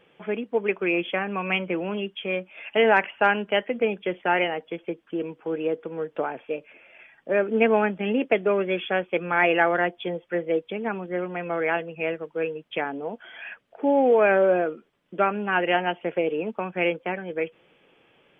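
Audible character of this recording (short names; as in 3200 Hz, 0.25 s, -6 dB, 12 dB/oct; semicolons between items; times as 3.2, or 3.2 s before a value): noise floor -62 dBFS; spectral tilt -3.0 dB/oct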